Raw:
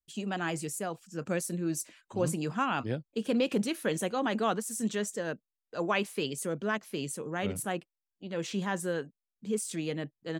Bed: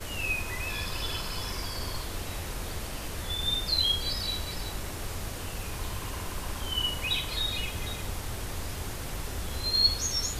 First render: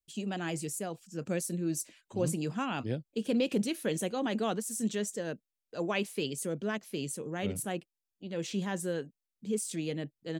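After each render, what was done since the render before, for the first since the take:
parametric band 1,200 Hz −7.5 dB 1.4 octaves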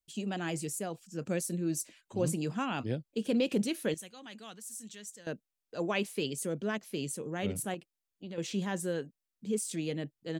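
0:03.94–0:05.27: guitar amp tone stack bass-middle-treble 5-5-5
0:07.74–0:08.38: downward compressor 4 to 1, threshold −38 dBFS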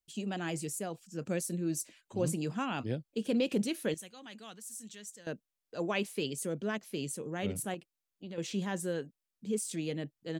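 level −1 dB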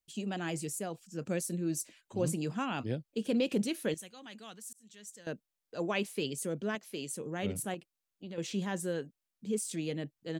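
0:04.73–0:05.16: fade in
0:06.75–0:07.17: low-shelf EQ 190 Hz −12 dB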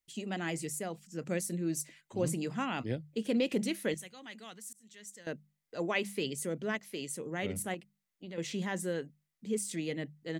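parametric band 2,000 Hz +9.5 dB 0.21 octaves
mains-hum notches 50/100/150/200 Hz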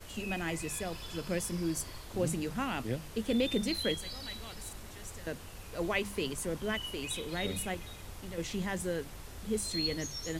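mix in bed −11.5 dB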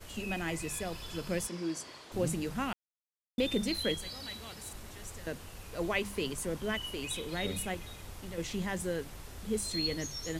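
0:01.47–0:02.12: band-pass filter 240–6,600 Hz
0:02.73–0:03.38: silence
0:04.08–0:04.71: high-pass filter 68 Hz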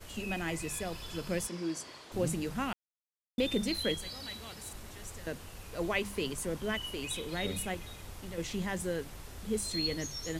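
no processing that can be heard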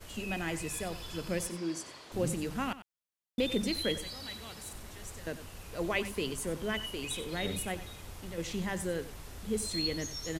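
single-tap delay 93 ms −14 dB

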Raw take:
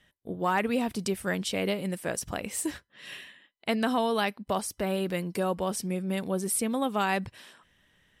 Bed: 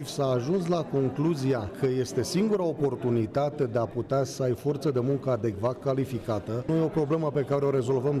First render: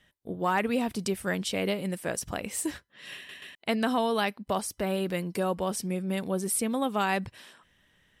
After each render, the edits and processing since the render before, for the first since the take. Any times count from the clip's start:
0:03.16: stutter in place 0.13 s, 3 plays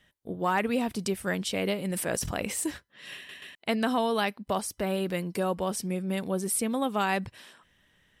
0:01.81–0:02.64: level that may fall only so fast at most 23 dB per second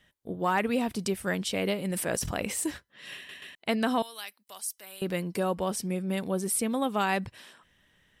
0:04.02–0:05.02: first difference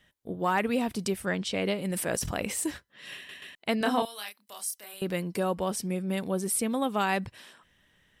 0:01.25–0:01.80: low-pass filter 5,000 Hz → 10,000 Hz
0:03.78–0:04.94: double-tracking delay 29 ms −4 dB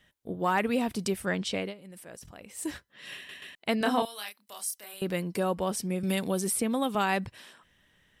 0:01.54–0:02.73: duck −16.5 dB, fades 0.20 s
0:06.03–0:06.95: multiband upward and downward compressor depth 70%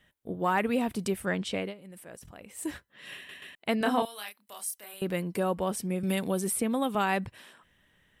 parametric band 5,200 Hz −6 dB 0.99 octaves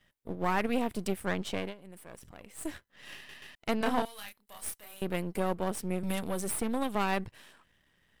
gain on one half-wave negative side −12 dB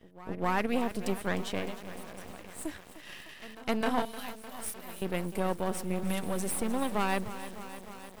backwards echo 260 ms −19 dB
feedback echo at a low word length 304 ms, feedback 80%, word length 7 bits, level −13 dB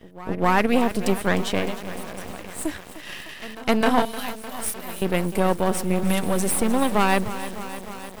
level +10 dB

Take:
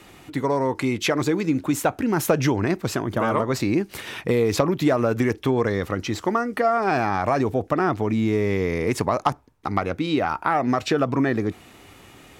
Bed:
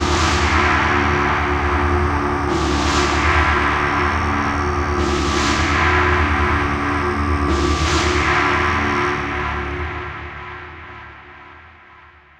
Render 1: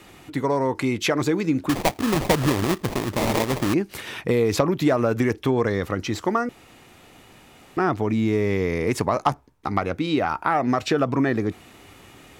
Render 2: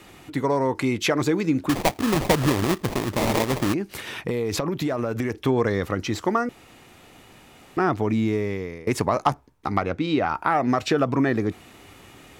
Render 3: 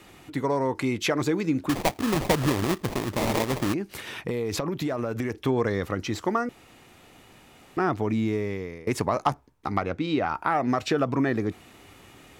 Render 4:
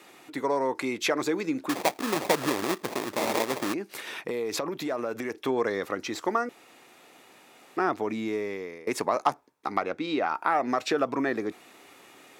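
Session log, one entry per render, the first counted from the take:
0:01.69–0:03.74: sample-rate reduction 1,500 Hz, jitter 20%; 0:06.49–0:07.77: fill with room tone; 0:09.13–0:09.74: double-tracking delay 14 ms −12.5 dB
0:03.72–0:05.44: downward compressor, threshold −21 dBFS; 0:08.16–0:08.87: fade out, to −20 dB; 0:09.82–0:10.35: high-frequency loss of the air 59 metres
level −3 dB
high-pass filter 320 Hz 12 dB per octave; notch filter 3,000 Hz, Q 18

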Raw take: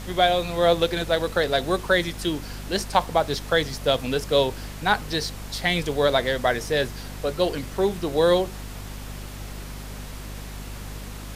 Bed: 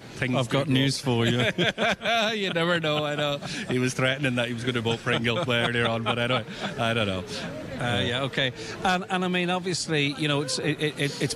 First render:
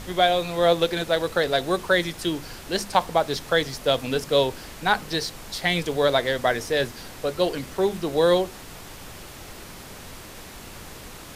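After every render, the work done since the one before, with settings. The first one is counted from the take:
hum removal 50 Hz, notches 5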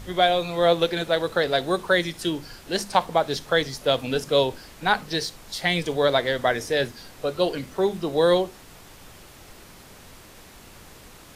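noise reduction from a noise print 6 dB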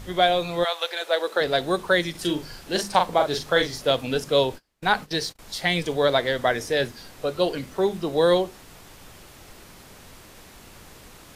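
0:00.63–0:01.40: high-pass filter 910 Hz → 280 Hz 24 dB per octave
0:02.11–0:03.91: double-tracking delay 40 ms −5 dB
0:04.44–0:05.39: noise gate −40 dBFS, range −30 dB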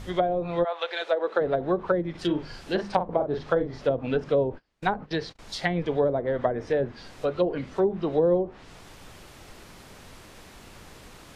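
treble cut that deepens with the level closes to 510 Hz, closed at −17 dBFS
high-shelf EQ 6,700 Hz −6 dB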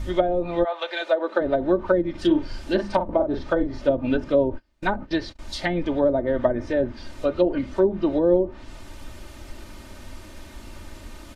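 low-shelf EQ 230 Hz +9 dB
comb filter 3.3 ms, depth 73%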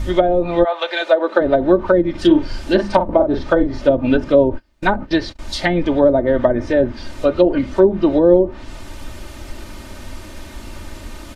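level +7.5 dB
brickwall limiter −1 dBFS, peak gain reduction 3 dB

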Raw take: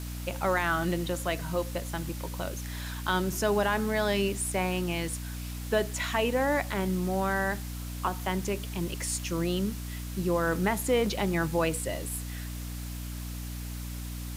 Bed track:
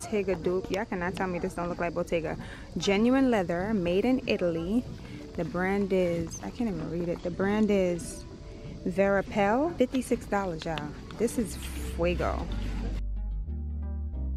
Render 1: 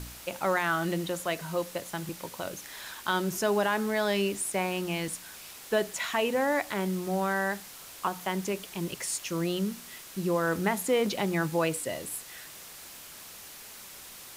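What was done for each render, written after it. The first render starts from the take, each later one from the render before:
hum removal 60 Hz, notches 5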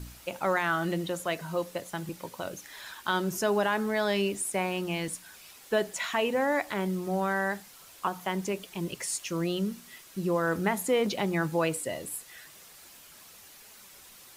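broadband denoise 7 dB, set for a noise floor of −47 dBFS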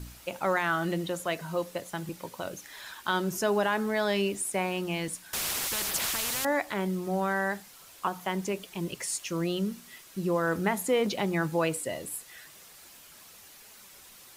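0:05.33–0:06.45: every bin compressed towards the loudest bin 10 to 1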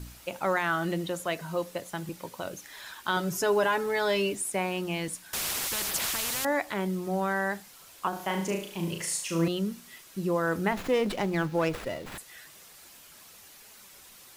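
0:03.16–0:04.35: comb filter 6.9 ms
0:08.09–0:09.48: flutter between parallel walls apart 6.2 metres, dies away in 0.5 s
0:10.72–0:12.18: windowed peak hold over 5 samples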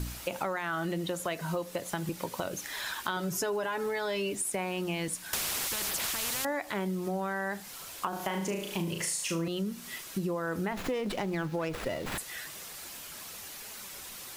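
in parallel at +3 dB: brickwall limiter −23 dBFS, peak gain reduction 8.5 dB
on the sum: downward compressor 6 to 1, threshold −30 dBFS, peak gain reduction 13 dB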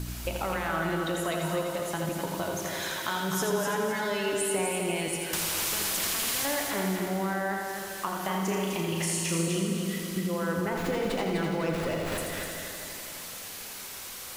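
echo machine with several playback heads 84 ms, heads first and third, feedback 57%, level −6 dB
dense smooth reverb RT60 3 s, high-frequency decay 0.85×, pre-delay 0 ms, DRR 5 dB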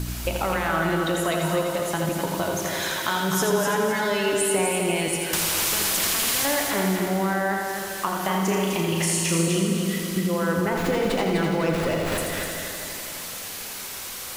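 level +6 dB

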